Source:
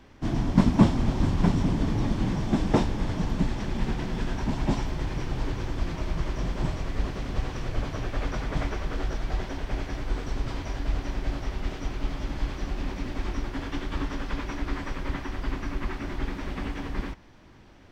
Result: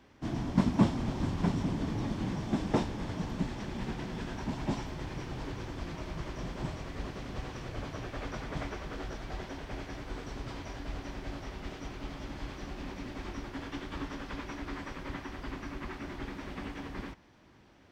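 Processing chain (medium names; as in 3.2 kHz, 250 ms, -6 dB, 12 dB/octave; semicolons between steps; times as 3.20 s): high-pass 94 Hz 6 dB/octave; trim -5.5 dB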